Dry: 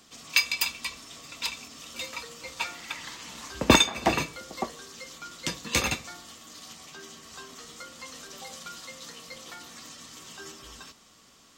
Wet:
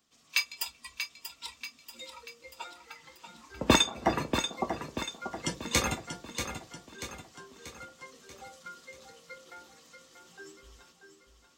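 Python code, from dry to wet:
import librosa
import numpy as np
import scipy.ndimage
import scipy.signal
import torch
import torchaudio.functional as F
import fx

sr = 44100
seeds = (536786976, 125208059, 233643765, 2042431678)

y = fx.noise_reduce_blind(x, sr, reduce_db=12)
y = fx.rider(y, sr, range_db=4, speed_s=2.0)
y = fx.echo_feedback(y, sr, ms=636, feedback_pct=50, wet_db=-8)
y = y * librosa.db_to_amplitude(-2.5)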